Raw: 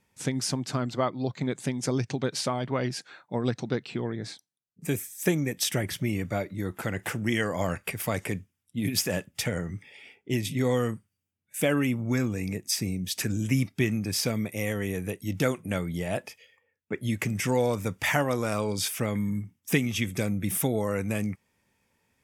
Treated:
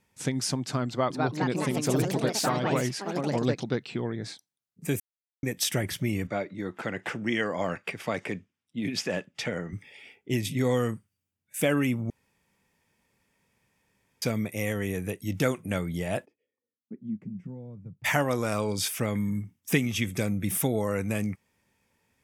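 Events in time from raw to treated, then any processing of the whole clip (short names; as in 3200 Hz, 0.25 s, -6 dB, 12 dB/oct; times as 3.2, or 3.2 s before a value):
0.88–3.89 echoes that change speed 0.223 s, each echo +3 st, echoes 3
5–5.43 mute
6.27–9.73 BPF 180–4700 Hz
12.1–14.22 room tone
16.24–18.04 band-pass 330 Hz -> 130 Hz, Q 5.4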